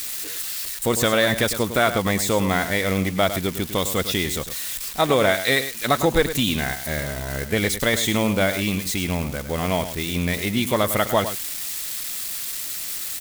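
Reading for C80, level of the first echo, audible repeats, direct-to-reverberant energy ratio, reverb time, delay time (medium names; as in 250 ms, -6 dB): no reverb, -11.0 dB, 1, no reverb, no reverb, 104 ms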